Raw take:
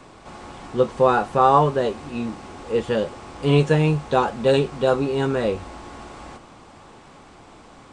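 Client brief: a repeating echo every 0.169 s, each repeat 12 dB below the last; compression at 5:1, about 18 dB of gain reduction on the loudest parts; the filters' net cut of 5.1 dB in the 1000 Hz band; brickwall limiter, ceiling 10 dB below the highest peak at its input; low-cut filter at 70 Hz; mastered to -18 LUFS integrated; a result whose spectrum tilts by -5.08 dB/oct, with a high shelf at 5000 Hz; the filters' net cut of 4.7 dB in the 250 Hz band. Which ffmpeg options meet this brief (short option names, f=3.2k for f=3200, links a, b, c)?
-af "highpass=70,equalizer=f=250:t=o:g=-6.5,equalizer=f=1k:t=o:g=-6,highshelf=f=5k:g=-6.5,acompressor=threshold=-36dB:ratio=5,alimiter=level_in=9.5dB:limit=-24dB:level=0:latency=1,volume=-9.5dB,aecho=1:1:169|338|507:0.251|0.0628|0.0157,volume=25.5dB"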